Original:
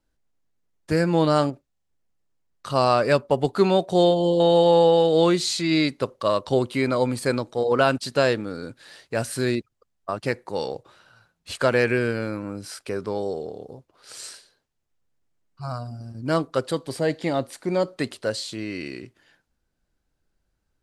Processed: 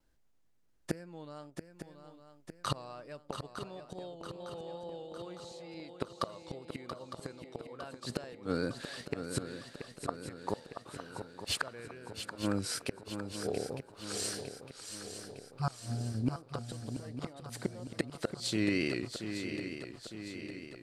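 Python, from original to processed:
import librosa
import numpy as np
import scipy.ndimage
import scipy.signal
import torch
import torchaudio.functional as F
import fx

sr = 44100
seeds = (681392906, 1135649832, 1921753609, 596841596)

y = fx.wow_flutter(x, sr, seeds[0], rate_hz=2.1, depth_cents=59.0)
y = fx.gate_flip(y, sr, shuts_db=-19.0, range_db=-29)
y = fx.echo_swing(y, sr, ms=907, ratio=3, feedback_pct=55, wet_db=-8.5)
y = y * 10.0 ** (1.0 / 20.0)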